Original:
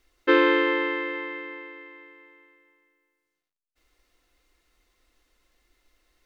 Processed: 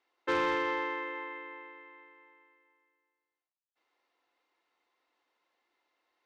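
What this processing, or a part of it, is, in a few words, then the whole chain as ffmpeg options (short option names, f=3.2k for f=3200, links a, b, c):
intercom: -af "highpass=340,lowpass=3.9k,equalizer=f=890:t=o:w=0.53:g=10,asoftclip=type=tanh:threshold=-15.5dB,volume=-8dB"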